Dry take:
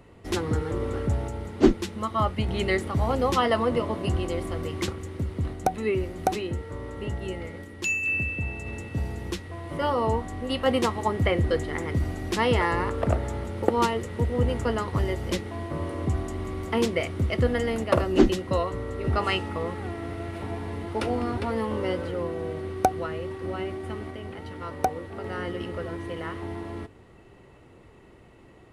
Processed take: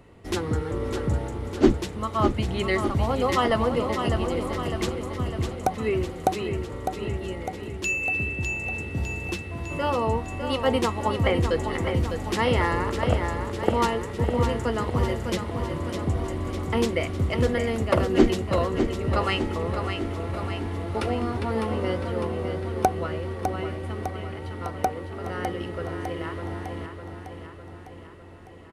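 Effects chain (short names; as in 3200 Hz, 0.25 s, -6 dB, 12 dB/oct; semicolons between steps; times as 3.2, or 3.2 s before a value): feedback echo 0.604 s, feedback 60%, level -7 dB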